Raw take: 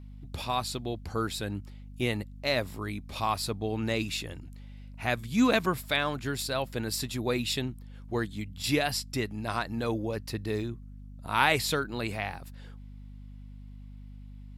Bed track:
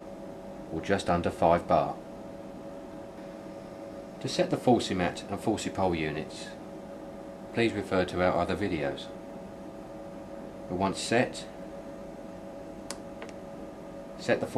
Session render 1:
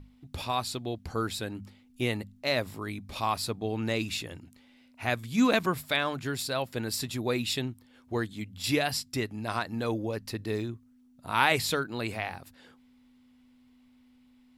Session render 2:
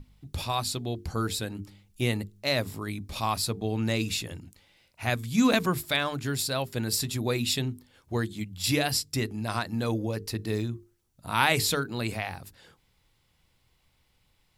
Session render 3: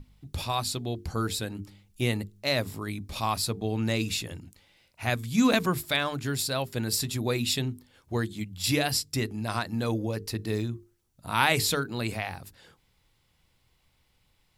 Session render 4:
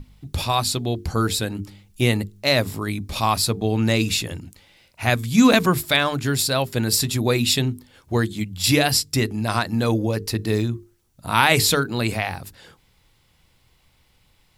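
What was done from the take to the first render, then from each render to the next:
mains-hum notches 50/100/150/200 Hz
bass and treble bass +6 dB, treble +6 dB; mains-hum notches 50/100/150/200/250/300/350/400/450 Hz
no processing that can be heard
level +8 dB; brickwall limiter −2 dBFS, peak gain reduction 3 dB

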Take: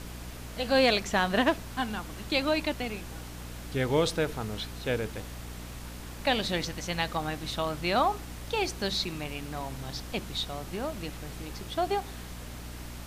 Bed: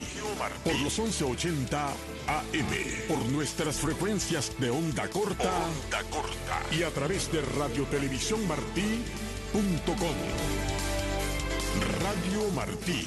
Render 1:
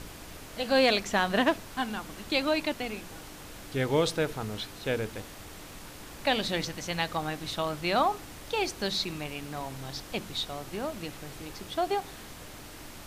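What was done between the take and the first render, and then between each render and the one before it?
hum removal 60 Hz, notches 4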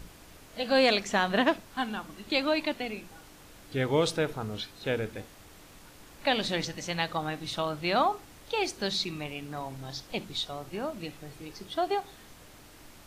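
noise reduction from a noise print 7 dB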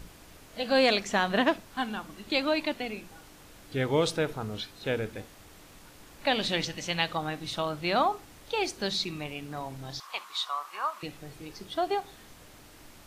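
0:06.41–0:07.15: parametric band 2,900 Hz +5.5 dB
0:10.00–0:11.03: high-pass with resonance 1,100 Hz, resonance Q 8.2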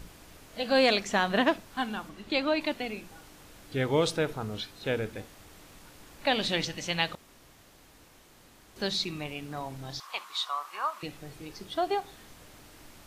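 0:02.09–0:02.61: high-shelf EQ 6,700 Hz −9.5 dB
0:07.15–0:08.76: fill with room tone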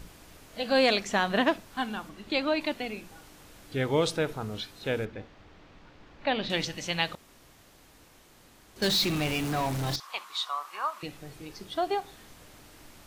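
0:05.05–0:06.50: high-frequency loss of the air 210 metres
0:08.82–0:09.96: power curve on the samples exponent 0.5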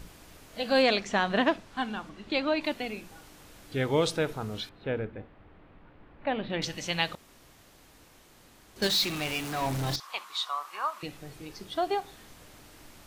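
0:00.82–0:02.64: high-frequency loss of the air 52 metres
0:04.69–0:06.62: high-frequency loss of the air 460 metres
0:08.87–0:09.62: low-shelf EQ 480 Hz −8 dB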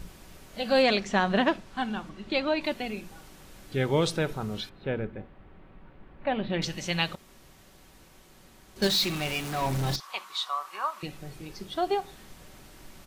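low-shelf EQ 240 Hz +4.5 dB
comb filter 5.3 ms, depth 31%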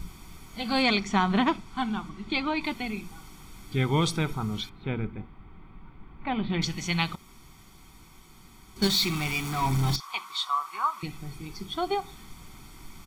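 notch filter 560 Hz, Q 15
comb filter 0.9 ms, depth 69%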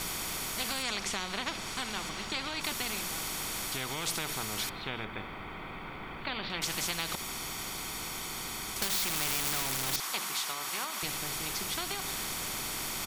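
downward compressor, threshold −27 dBFS, peak gain reduction 8.5 dB
every bin compressed towards the loudest bin 4 to 1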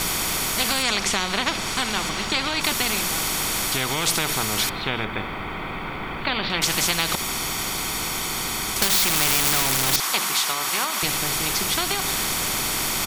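level +11.5 dB

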